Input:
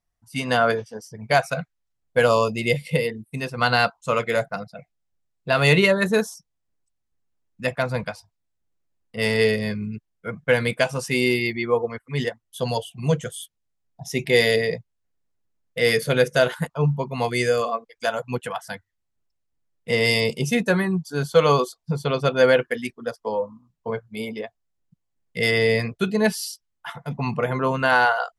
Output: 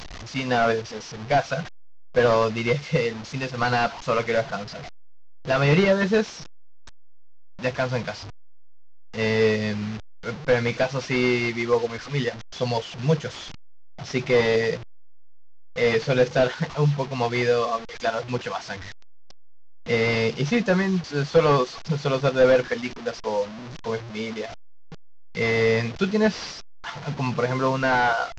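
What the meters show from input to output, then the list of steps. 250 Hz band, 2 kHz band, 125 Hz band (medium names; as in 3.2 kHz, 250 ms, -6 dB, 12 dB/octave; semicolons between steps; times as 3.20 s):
0.0 dB, -3.0 dB, 0.0 dB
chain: one-bit delta coder 32 kbps, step -31 dBFS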